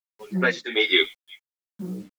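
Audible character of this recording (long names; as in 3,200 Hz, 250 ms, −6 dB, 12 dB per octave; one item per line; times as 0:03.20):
a quantiser's noise floor 10 bits, dither none
tremolo triangle 1.2 Hz, depth 90%
a shimmering, thickened sound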